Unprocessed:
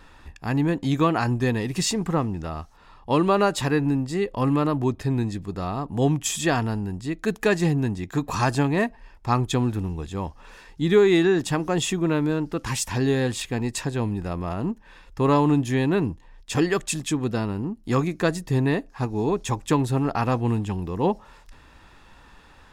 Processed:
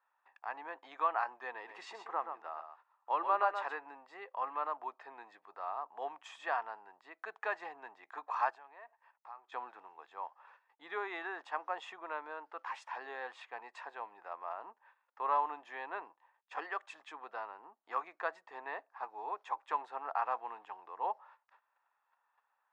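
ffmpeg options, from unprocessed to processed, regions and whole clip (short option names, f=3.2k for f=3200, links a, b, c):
-filter_complex "[0:a]asettb=1/sr,asplit=3[a][b][c];[a]atrim=end=1.534[d];[b]atrim=start=1.53:end=3.76,asetpts=PTS-STARTPTS,afade=t=in:d=0.004:c=qsin,afade=t=out:st=2.226:d=0.004:c=qsin,equalizer=f=340:w=4.6:g=5,aecho=1:1:128:0.398,atrim=end_sample=98343[e];[c]atrim=start=3.756[f];[d][e]acrossfade=d=0.004:c1=hsin:c2=qsin[g];[g][f]acrossfade=d=0.004:c1=qsin:c2=hsin,asettb=1/sr,asplit=3[h][i][j];[h]atrim=end=8.504[k];[i]atrim=start=8.5:end=9.52,asetpts=PTS-STARTPTS,afade=t=in:d=0.004:c=qsin,afade=t=out:st=1.016:d=0.004:c=qsin,equalizer=f=180:w=1.6:g=-6.5,acompressor=threshold=-35dB:ratio=10:attack=3.2:release=140:knee=1:detection=peak[l];[j]atrim=start=9.516[m];[k][l]acrossfade=d=0.004:c1=hsin:c2=qsin[n];[n][m]acrossfade=d=0.004:c1=qsin:c2=hsin,lowpass=1.2k,agate=range=-17dB:threshold=-46dB:ratio=16:detection=peak,highpass=f=790:w=0.5412,highpass=f=790:w=1.3066,volume=-3.5dB"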